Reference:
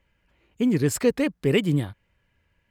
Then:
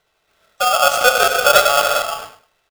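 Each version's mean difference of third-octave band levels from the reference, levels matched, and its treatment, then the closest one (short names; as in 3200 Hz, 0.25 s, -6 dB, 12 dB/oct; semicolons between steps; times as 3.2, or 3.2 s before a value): 18.5 dB: speaker cabinet 170–6700 Hz, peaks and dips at 190 Hz -9 dB, 400 Hz +6 dB, 700 Hz -5 dB, 1100 Hz +4 dB, 2000 Hz -5 dB; feedback echo 0.103 s, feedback 20%, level -12.5 dB; non-linear reverb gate 0.46 s flat, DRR 1.5 dB; polarity switched at an audio rate 990 Hz; gain +6 dB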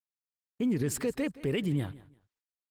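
3.5 dB: gate -52 dBFS, range -49 dB; limiter -19.5 dBFS, peak gain reduction 10 dB; on a send: feedback echo 0.171 s, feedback 25%, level -18.5 dB; on the sum: gain -2.5 dB; Opus 20 kbps 48000 Hz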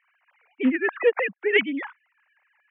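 13.5 dB: sine-wave speech; HPF 230 Hz; band shelf 1300 Hz +15.5 dB 2.3 oct; Doppler distortion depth 0.15 ms; gain -2 dB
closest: second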